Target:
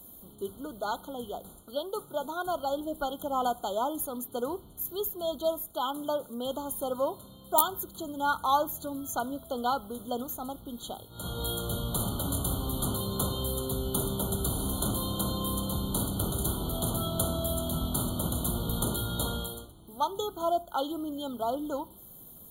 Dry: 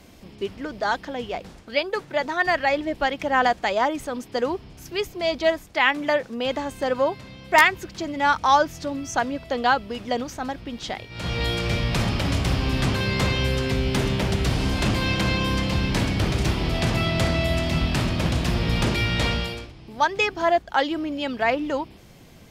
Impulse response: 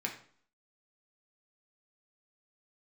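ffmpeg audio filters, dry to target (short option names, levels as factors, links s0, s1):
-filter_complex "[0:a]aexciter=amount=9.4:drive=9.6:freq=8700,asplit=2[s0][s1];[1:a]atrim=start_sample=2205,afade=t=out:st=0.36:d=0.01,atrim=end_sample=16317,asetrate=48510,aresample=44100[s2];[s1][s2]afir=irnorm=-1:irlink=0,volume=0.211[s3];[s0][s3]amix=inputs=2:normalize=0,afftfilt=real='re*eq(mod(floor(b*sr/1024/1500),2),0)':imag='im*eq(mod(floor(b*sr/1024/1500),2),0)':win_size=1024:overlap=0.75,volume=0.355"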